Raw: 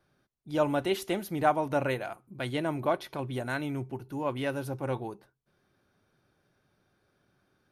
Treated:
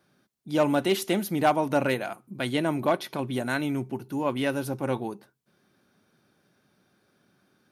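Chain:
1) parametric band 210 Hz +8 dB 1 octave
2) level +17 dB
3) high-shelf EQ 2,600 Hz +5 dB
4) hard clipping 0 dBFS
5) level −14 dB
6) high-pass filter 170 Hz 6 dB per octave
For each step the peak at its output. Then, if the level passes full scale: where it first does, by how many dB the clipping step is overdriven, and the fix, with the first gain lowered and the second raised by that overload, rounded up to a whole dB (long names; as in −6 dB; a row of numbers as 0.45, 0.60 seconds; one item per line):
−11.5, +5.5, +6.0, 0.0, −14.0, −11.0 dBFS
step 2, 6.0 dB
step 2 +11 dB, step 5 −8 dB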